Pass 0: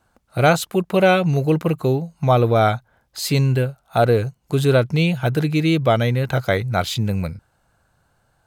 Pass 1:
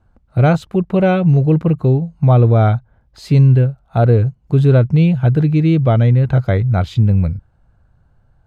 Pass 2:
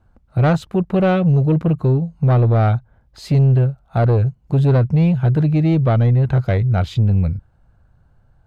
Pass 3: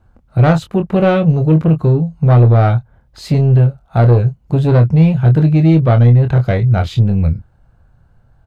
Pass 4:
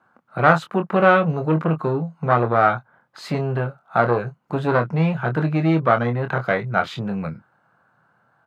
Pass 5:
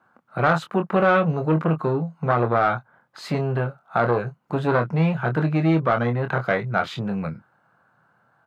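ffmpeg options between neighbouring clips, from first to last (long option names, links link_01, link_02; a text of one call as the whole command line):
ffmpeg -i in.wav -af "aemphasis=mode=reproduction:type=riaa,volume=-2.5dB" out.wav
ffmpeg -i in.wav -af "asoftclip=type=tanh:threshold=-9dB" out.wav
ffmpeg -i in.wav -filter_complex "[0:a]asplit=2[link_01][link_02];[link_02]adelay=25,volume=-7.5dB[link_03];[link_01][link_03]amix=inputs=2:normalize=0,volume=3.5dB" out.wav
ffmpeg -i in.wav -af "highpass=frequency=160:width=0.5412,highpass=frequency=160:width=1.3066,equalizer=frequency=1300:width_type=o:width=1.7:gain=15,volume=-8dB" out.wav
ffmpeg -i in.wav -af "asoftclip=type=tanh:threshold=-4dB,alimiter=level_in=8dB:limit=-1dB:release=50:level=0:latency=1,volume=-8.5dB" out.wav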